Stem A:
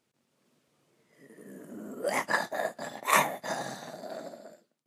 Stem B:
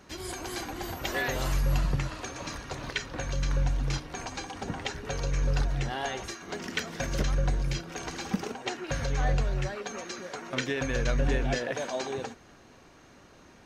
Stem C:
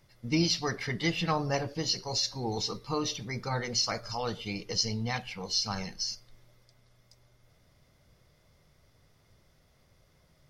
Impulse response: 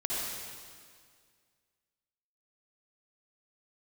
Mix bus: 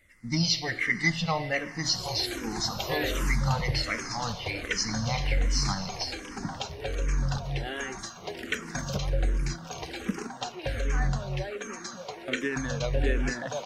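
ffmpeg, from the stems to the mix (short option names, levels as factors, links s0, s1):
-filter_complex "[0:a]acompressor=threshold=0.0282:ratio=6,adelay=2500,volume=0.251[s0];[1:a]adelay=1750,volume=1.33[s1];[2:a]equalizer=f=400:t=o:w=0.33:g=-10,equalizer=f=2000:t=o:w=0.33:g=11,equalizer=f=8000:t=o:w=0.33:g=7,volume=1.26,asplit=2[s2][s3];[s3]volume=0.15[s4];[3:a]atrim=start_sample=2205[s5];[s4][s5]afir=irnorm=-1:irlink=0[s6];[s0][s1][s2][s6]amix=inputs=4:normalize=0,asplit=2[s7][s8];[s8]afreqshift=-1.3[s9];[s7][s9]amix=inputs=2:normalize=1"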